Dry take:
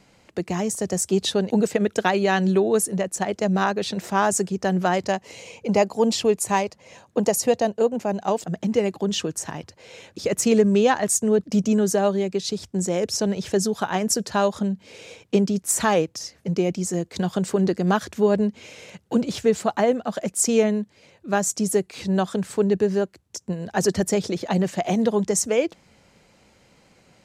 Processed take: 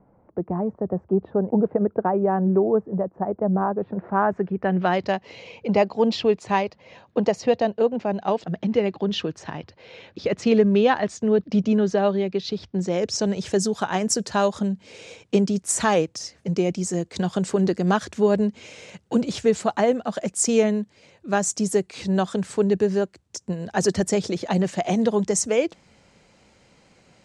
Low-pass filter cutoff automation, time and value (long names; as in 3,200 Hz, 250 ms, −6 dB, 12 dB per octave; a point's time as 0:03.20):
low-pass filter 24 dB per octave
0:03.77 1,100 Hz
0:04.62 2,200 Hz
0:04.92 4,400 Hz
0:12.73 4,400 Hz
0:13.38 9,300 Hz